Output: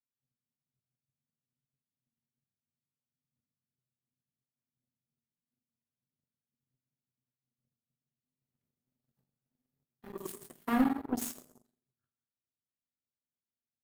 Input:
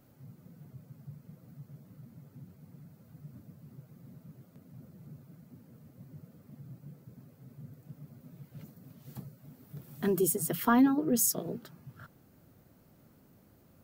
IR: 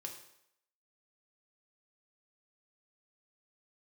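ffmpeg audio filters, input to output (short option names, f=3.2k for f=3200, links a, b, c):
-filter_complex "[0:a]asettb=1/sr,asplit=3[a][b][c];[a]atrim=end=8.414[d];[b]atrim=start=8.41:end=9.83,asetpts=PTS-STARTPTS,afade=t=in:d=0.004:c=qsin,afade=t=out:st=1.416:d=0.004:c=qsin,aeval=exprs='val(0)+0.5*0.00398*sgn(val(0))':c=same[e];[c]atrim=start=9.826[f];[d][e]acrossfade=d=0.004:c1=hsin:c2=qsin[g];[g][f]acrossfade=d=0.004:c1=qsin:c2=hsin[h];[1:a]atrim=start_sample=2205,asetrate=31311,aresample=44100[i];[h][i]afir=irnorm=-1:irlink=0,aeval=exprs='0.299*(cos(1*acos(clip(val(0)/0.299,-1,1)))-cos(1*PI/2))+0.106*(cos(2*acos(clip(val(0)/0.299,-1,1)))-cos(2*PI/2))+0.0299*(cos(4*acos(clip(val(0)/0.299,-1,1)))-cos(4*PI/2))+0.0422*(cos(7*acos(clip(val(0)/0.299,-1,1)))-cos(7*PI/2))':c=same,volume=-6.5dB"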